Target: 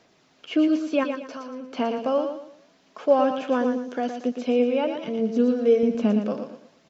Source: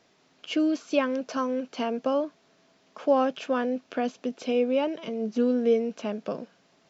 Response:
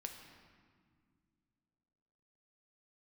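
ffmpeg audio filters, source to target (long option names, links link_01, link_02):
-filter_complex "[0:a]asettb=1/sr,asplit=3[link_01][link_02][link_03];[link_01]atrim=end=1.034[link_04];[link_02]atrim=start=1.03:end=1.73,asetpts=PTS-STARTPTS,afade=type=in:duration=0.004:curve=qsin,afade=type=out:start_time=0.696:duration=0.004:curve=qsin,acompressor=threshold=-36dB:ratio=5[link_05];[link_03]atrim=start=1.726[link_06];[link_04][link_05]acrossfade=duration=0.004:curve1=hsin:curve2=qsin[link_07];[link_07][link_06]acrossfade=duration=0.004:curve1=qsin:curve2=hsin,asettb=1/sr,asplit=3[link_08][link_09][link_10];[link_08]atrim=end=5.834[link_11];[link_09]atrim=start=5.83:end=6.27,asetpts=PTS-STARTPTS,afade=type=in:duration=0.004:curve=qsin,afade=type=out:start_time=0.436:duration=0.004:curve=qsin,lowshelf=frequency=390:gain=12[link_12];[link_10]atrim=start=6.266[link_13];[link_11][link_12]acrossfade=duration=0.004:curve1=hsin:curve2=qsin[link_14];[link_14][link_13]acrossfade=duration=0.004:curve1=qsin:curve2=hsin,aphaser=in_gain=1:out_gain=1:delay=4.2:decay=0.31:speed=0.57:type=sinusoidal,asettb=1/sr,asplit=3[link_15][link_16][link_17];[link_15]atrim=end=3.494[link_18];[link_16]atrim=start=3.49:end=4.05,asetpts=PTS-STARTPTS,afade=type=in:duration=0.004:curve=qsin,afade=type=out:start_time=0.556:duration=0.004:curve=qsin,equalizer=frequency=630:width_type=o:width=0.33:gain=-4,equalizer=frequency=1250:width_type=o:width=0.33:gain=-5,equalizer=frequency=2500:width_type=o:width=0.33:gain=-10,equalizer=frequency=6300:width_type=o:width=0.33:gain=10[link_19];[link_17]atrim=start=4.046[link_20];[link_18][link_19]acrossfade=duration=0.004:curve1=hsin:curve2=qsin[link_21];[link_21][link_20]acrossfade=duration=0.004:curve1=qsin:curve2=hsin,aecho=1:1:115|230|345|460:0.422|0.135|0.0432|0.0138,acrossover=split=3000[link_22][link_23];[link_23]acompressor=threshold=-48dB:ratio=4:attack=1:release=60[link_24];[link_22][link_24]amix=inputs=2:normalize=0,volume=1.5dB"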